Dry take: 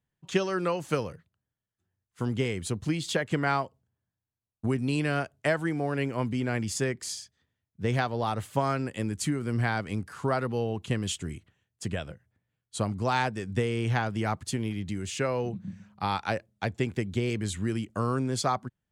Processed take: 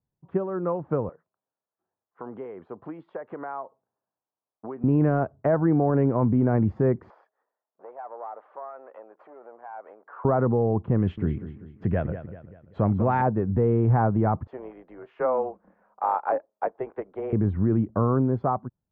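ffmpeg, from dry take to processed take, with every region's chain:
-filter_complex "[0:a]asettb=1/sr,asplit=3[a][b][c];[a]atrim=end=1.094[d];[b]atrim=start=1.09:end=4.84,asetpts=PTS-STARTPTS,afade=t=in:d=0.004:c=qsin,afade=t=out:st=3.746:d=0.004:c=qsin,highpass=560,acompressor=threshold=-44dB:ratio=2.5:attack=3.2:release=140:knee=1:detection=peak[e];[c]atrim=start=4.836[f];[d][e]acrossfade=d=0.004:c1=hsin:c2=qsin[g];[g][f]acrossfade=d=0.004:c1=qsin:c2=hsin,asettb=1/sr,asplit=3[h][i][j];[h]atrim=end=7.104[k];[i]atrim=start=7.1:end=10.25,asetpts=PTS-STARTPTS,afade=t=in:d=0.004:c=qsin,afade=t=out:st=3.146:d=0.004:c=qsin,acompressor=threshold=-38dB:ratio=6:attack=3.2:release=140:knee=1:detection=peak,aeval=exprs='clip(val(0),-1,0.00531)':c=same,highpass=f=540:w=0.5412,highpass=f=540:w=1.3066[l];[j]atrim=start=10.246[m];[k][l]acrossfade=d=0.004:c1=hsin:c2=qsin[n];[n][m]acrossfade=d=0.004:c1=qsin:c2=hsin,asettb=1/sr,asplit=3[o][p][q];[o]atrim=end=10.984[r];[p]atrim=start=10.98:end=13.22,asetpts=PTS-STARTPTS,afade=t=in:d=0.004:c=qsin,afade=t=out:st=2.236:d=0.004:c=qsin,highshelf=f=1.5k:t=q:w=1.5:g=8,aecho=1:1:195|390|585|780:0.237|0.107|0.048|0.0216,atrim=end_sample=98784[s];[q]atrim=start=13.216[t];[r][s]acrossfade=d=0.004:c1=hsin:c2=qsin[u];[u][t]acrossfade=d=0.004:c1=qsin:c2=hsin,asettb=1/sr,asplit=3[v][w][x];[v]atrim=end=14.474[y];[w]atrim=start=14.47:end=17.33,asetpts=PTS-STARTPTS,afade=t=in:d=0.004:c=qsin,afade=t=out:st=2.856:d=0.004:c=qsin,highpass=f=490:w=0.5412,highpass=f=490:w=1.3066,tremolo=f=260:d=0.462[z];[x]atrim=start=17.326[aa];[y][z]acrossfade=d=0.004:c1=hsin:c2=qsin[ab];[ab][aa]acrossfade=d=0.004:c1=qsin:c2=hsin,lowpass=f=1.1k:w=0.5412,lowpass=f=1.1k:w=1.3066,dynaudnorm=f=500:g=5:m=10.5dB,alimiter=limit=-13.5dB:level=0:latency=1:release=11"

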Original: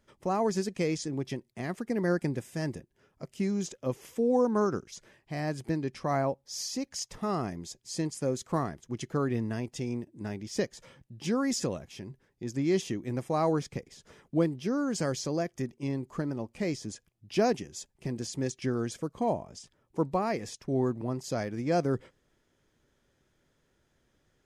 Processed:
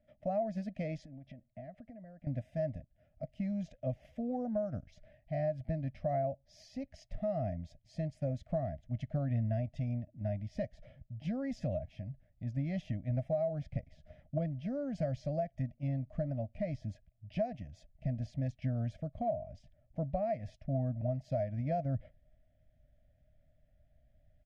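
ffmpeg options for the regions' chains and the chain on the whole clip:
-filter_complex "[0:a]asettb=1/sr,asplit=3[a][b][c];[a]atrim=end=1.054[d];[b]atrim=start=1.05:end=2.27,asetpts=PTS-STARTPTS,afade=t=in:d=0.004:c=qsin,afade=t=out:st=1.216:d=0.004:c=qsin,lowpass=f=2.6k:p=1,acompressor=threshold=-41dB:ratio=12:attack=3.2:release=140:knee=1:detection=peak[e];[c]atrim=start=2.266[f];[d][e]acrossfade=d=0.004:c1=hsin:c2=qsin[g];[g][f]acrossfade=d=0.004:c1=qsin:c2=hsin,firequalizer=gain_entry='entry(270,0);entry(390,-29);entry(620,14);entry(950,-24);entry(1900,-6);entry(7300,-29)':delay=0.05:min_phase=1,acompressor=threshold=-27dB:ratio=6,asubboost=boost=5.5:cutoff=100,volume=-2.5dB"

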